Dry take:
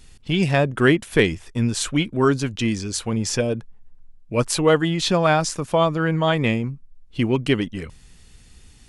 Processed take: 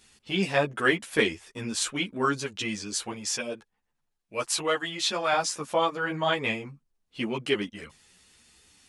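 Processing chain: high-pass 460 Hz 6 dB/octave, from 3.12 s 1.1 kHz, from 5.33 s 530 Hz; three-phase chorus

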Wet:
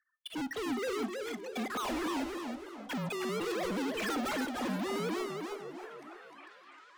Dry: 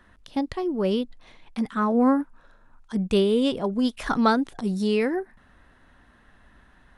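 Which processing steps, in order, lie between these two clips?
formants replaced by sine waves; high-pass 330 Hz 12 dB/octave; spectral gate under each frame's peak -15 dB strong; peaking EQ 1.2 kHz -9 dB 1.7 oct; compression 3:1, threshold -34 dBFS, peak gain reduction 12.5 dB; waveshaping leveller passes 5; level rider gain up to 7 dB; saturation -35 dBFS, distortion -11 dB; frequency shift -22 Hz; repeats whose band climbs or falls 602 ms, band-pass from 510 Hz, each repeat 0.7 oct, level -8.5 dB; reverberation RT60 0.55 s, pre-delay 4 ms, DRR 15 dB; modulated delay 310 ms, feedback 33%, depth 204 cents, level -4.5 dB

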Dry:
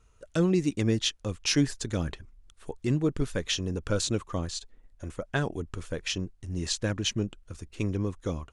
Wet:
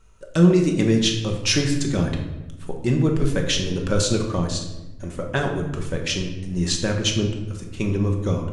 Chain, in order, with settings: simulated room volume 470 m³, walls mixed, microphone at 1.1 m; trim +5 dB

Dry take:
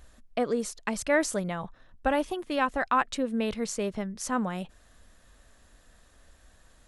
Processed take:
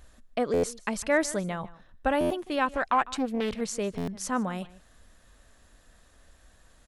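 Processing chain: echo from a far wall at 26 m, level -19 dB; buffer glitch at 0.53/2.20/3.97 s, samples 512, times 8; 2.70–3.61 s: loudspeaker Doppler distortion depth 0.42 ms

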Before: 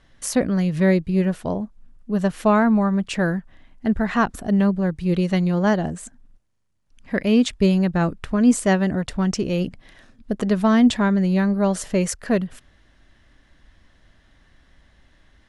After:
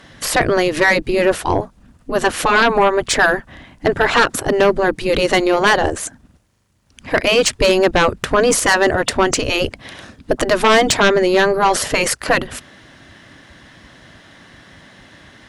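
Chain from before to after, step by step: spectral gate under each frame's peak -10 dB weak; sine folder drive 13 dB, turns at -6.5 dBFS

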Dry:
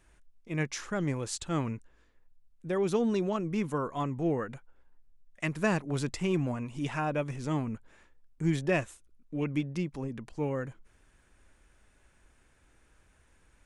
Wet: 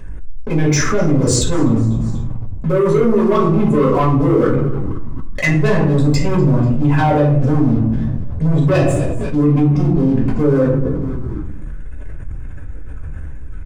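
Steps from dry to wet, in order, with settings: resonances exaggerated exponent 2; waveshaping leveller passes 3; frequency-shifting echo 245 ms, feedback 43%, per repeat -70 Hz, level -20.5 dB; reverberation RT60 0.70 s, pre-delay 4 ms, DRR -6.5 dB; level flattener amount 70%; trim -6.5 dB

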